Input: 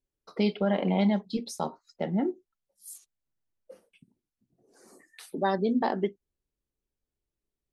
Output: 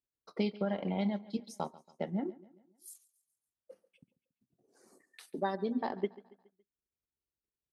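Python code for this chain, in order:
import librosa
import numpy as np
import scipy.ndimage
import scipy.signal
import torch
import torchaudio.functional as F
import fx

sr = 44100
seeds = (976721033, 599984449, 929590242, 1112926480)

y = fx.transient(x, sr, attack_db=5, sustain_db=-6)
y = scipy.signal.sosfilt(scipy.signal.butter(2, 59.0, 'highpass', fs=sr, output='sos'), y)
y = fx.echo_feedback(y, sr, ms=140, feedback_pct=47, wet_db=-20)
y = y * librosa.db_to_amplitude(-9.0)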